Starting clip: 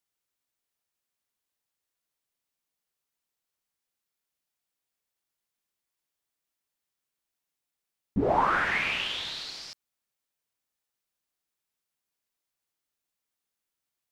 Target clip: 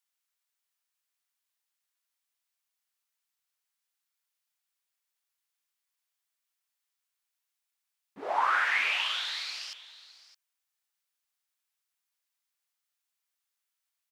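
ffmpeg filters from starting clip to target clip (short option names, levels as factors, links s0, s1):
-filter_complex "[0:a]highpass=1000,asplit=2[s0][s1];[s1]aecho=0:1:614:0.15[s2];[s0][s2]amix=inputs=2:normalize=0,volume=1.12"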